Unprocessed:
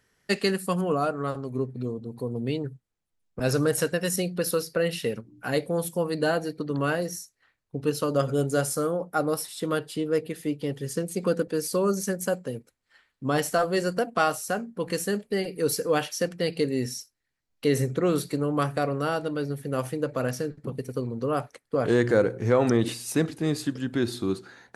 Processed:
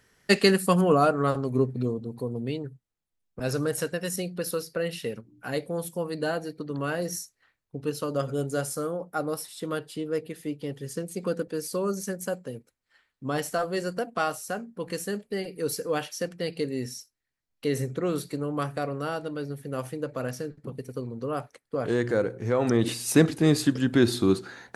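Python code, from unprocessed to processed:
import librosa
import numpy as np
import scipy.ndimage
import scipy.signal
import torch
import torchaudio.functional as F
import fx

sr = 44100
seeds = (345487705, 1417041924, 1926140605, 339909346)

y = fx.gain(x, sr, db=fx.line((1.68, 5.0), (2.66, -4.0), (6.91, -4.0), (7.17, 3.0), (7.78, -4.0), (22.54, -4.0), (23.15, 5.5)))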